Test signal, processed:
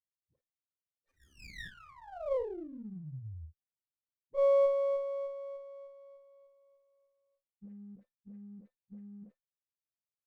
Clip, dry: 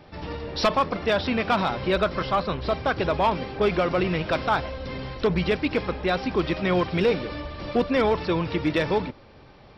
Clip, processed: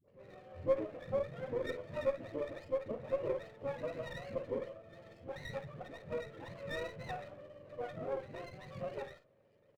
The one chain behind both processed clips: spectrum mirrored in octaves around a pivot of 590 Hz; vocal tract filter e; dispersion highs, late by 83 ms, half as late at 580 Hz; on a send: early reflections 38 ms -13 dB, 52 ms -12 dB; on the sum: running maximum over 9 samples; gain -4 dB

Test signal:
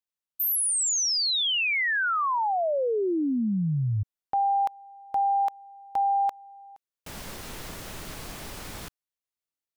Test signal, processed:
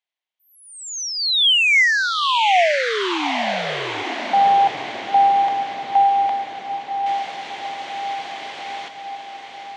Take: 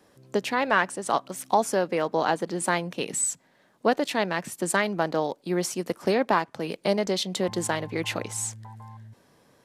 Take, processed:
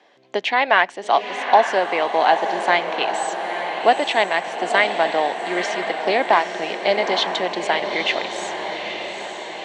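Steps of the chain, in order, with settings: speaker cabinet 460–5300 Hz, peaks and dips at 500 Hz -4 dB, 720 Hz +6 dB, 1300 Hz -6 dB, 2100 Hz +6 dB, 3200 Hz +5 dB, 5100 Hz -6 dB; on a send: diffused feedback echo 0.891 s, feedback 61%, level -7 dB; on the sum: gain +6.5 dB

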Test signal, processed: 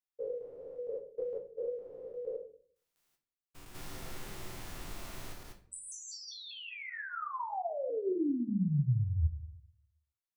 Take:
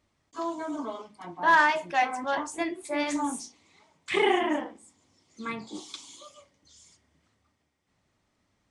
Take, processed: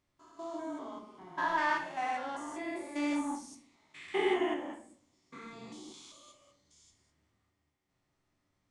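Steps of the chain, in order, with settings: stepped spectrum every 0.2 s; shoebox room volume 48 m³, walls mixed, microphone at 0.52 m; gain -7.5 dB

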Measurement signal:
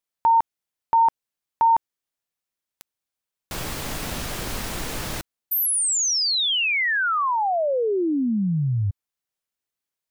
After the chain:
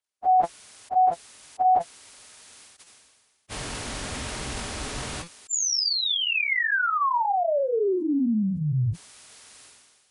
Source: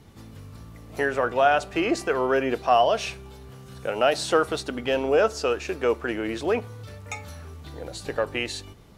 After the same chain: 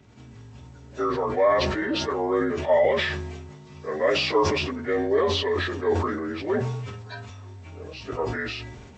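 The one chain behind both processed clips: inharmonic rescaling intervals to 84%; notch comb 170 Hz; sustainer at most 36 dB/s

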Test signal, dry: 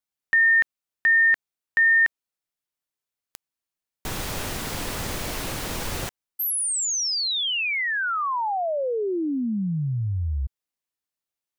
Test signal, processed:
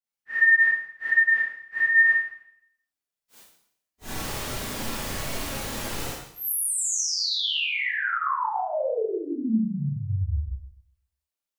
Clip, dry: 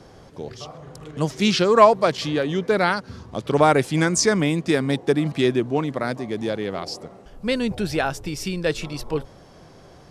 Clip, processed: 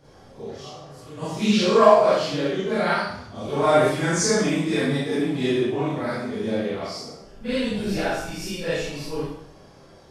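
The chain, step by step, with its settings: phase scrambler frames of 0.1 s; Schroeder reverb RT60 0.7 s, combs from 28 ms, DRR -8 dB; gain -10 dB

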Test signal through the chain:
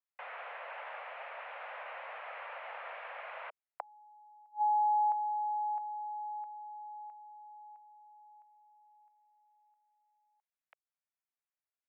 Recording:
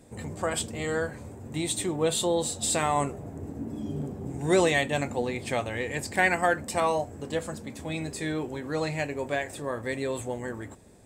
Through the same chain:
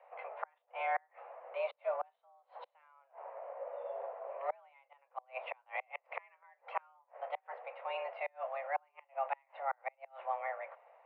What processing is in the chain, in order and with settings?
flipped gate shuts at -19 dBFS, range -36 dB; mistuned SSB +270 Hz 300–2300 Hz; gain -2.5 dB

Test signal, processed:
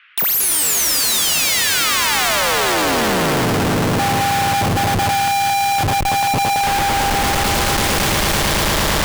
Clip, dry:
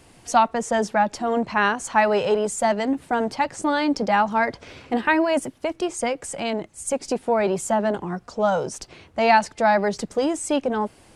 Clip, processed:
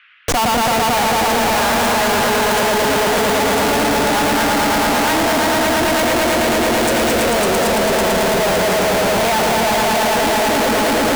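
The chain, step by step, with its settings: swelling echo 0.111 s, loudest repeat 5, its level -3 dB; Schmitt trigger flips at -28 dBFS; band noise 1300–3000 Hz -50 dBFS

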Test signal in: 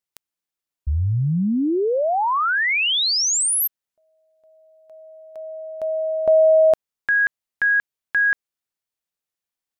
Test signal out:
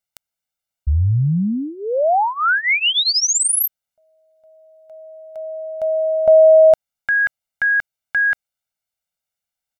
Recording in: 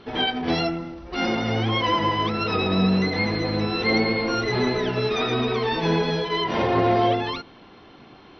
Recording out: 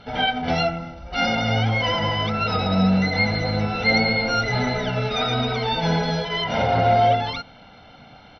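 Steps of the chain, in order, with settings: comb 1.4 ms, depth 85%

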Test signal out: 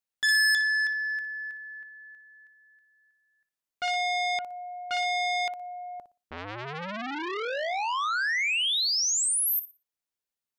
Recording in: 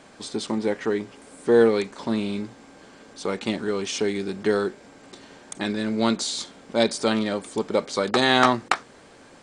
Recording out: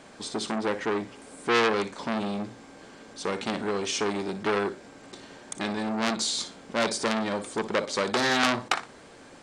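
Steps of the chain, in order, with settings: on a send: flutter echo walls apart 10.1 m, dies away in 0.27 s; on the sum: core saturation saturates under 3600 Hz

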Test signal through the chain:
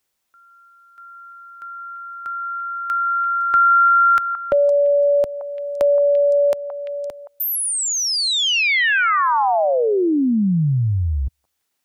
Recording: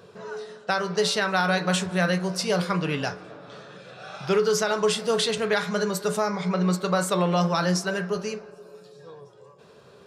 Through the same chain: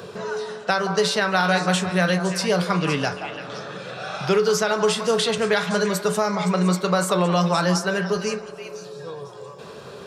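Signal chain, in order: delay with a stepping band-pass 0.171 s, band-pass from 950 Hz, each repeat 1.4 oct, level -6 dB; three-band squash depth 40%; gain +3 dB

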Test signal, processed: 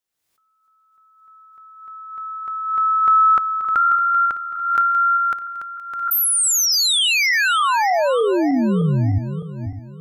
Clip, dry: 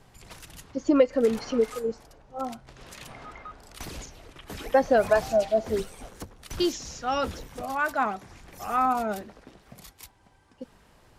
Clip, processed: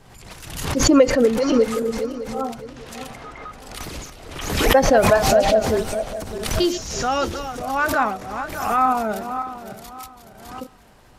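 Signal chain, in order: regenerating reverse delay 0.304 s, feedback 52%, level -9 dB; backwards sustainer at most 55 dB/s; gain +5 dB

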